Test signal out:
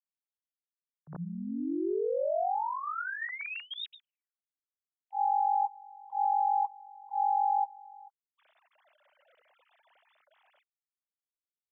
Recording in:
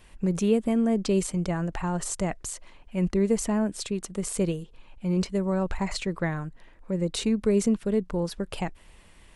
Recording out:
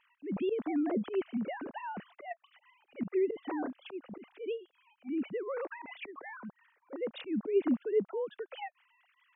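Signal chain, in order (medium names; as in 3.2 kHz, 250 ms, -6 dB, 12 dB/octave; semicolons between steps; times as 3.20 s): formants replaced by sine waves; slow attack 103 ms; trim -6.5 dB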